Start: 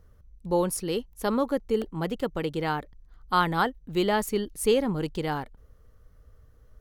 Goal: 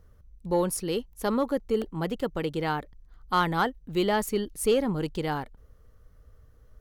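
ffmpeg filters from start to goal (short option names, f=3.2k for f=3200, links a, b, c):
-af "asoftclip=type=tanh:threshold=-12dB"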